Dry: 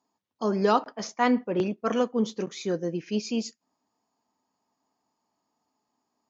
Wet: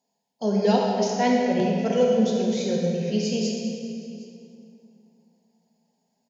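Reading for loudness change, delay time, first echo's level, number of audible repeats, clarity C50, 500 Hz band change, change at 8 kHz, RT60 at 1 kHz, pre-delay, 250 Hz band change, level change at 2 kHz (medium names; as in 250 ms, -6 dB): +4.0 dB, 762 ms, -22.0 dB, 1, 0.0 dB, +5.5 dB, no reading, 2.5 s, 19 ms, +5.0 dB, +0.5 dB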